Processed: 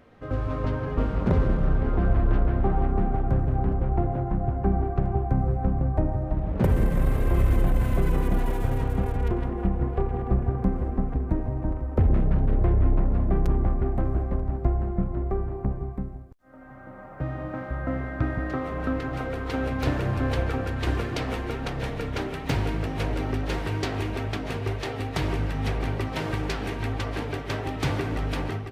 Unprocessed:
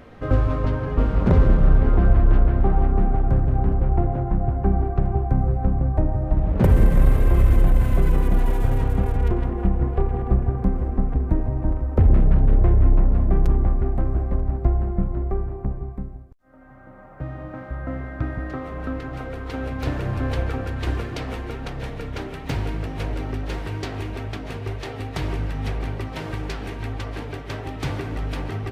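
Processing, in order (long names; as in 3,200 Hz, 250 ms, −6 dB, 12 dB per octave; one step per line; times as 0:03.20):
low-shelf EQ 62 Hz −6.5 dB
automatic gain control
level −9 dB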